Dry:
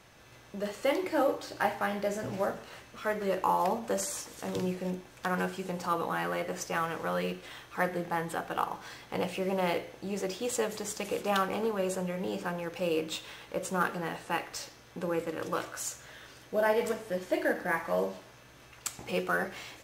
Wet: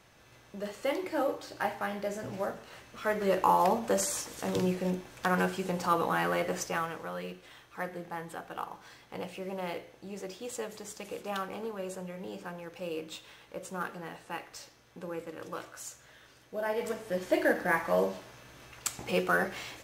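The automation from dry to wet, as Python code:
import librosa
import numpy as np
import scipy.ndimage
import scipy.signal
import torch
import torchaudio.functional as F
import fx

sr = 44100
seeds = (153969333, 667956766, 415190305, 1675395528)

y = fx.gain(x, sr, db=fx.line((2.61, -3.0), (3.31, 3.0), (6.55, 3.0), (7.11, -7.0), (16.6, -7.0), (17.27, 2.5)))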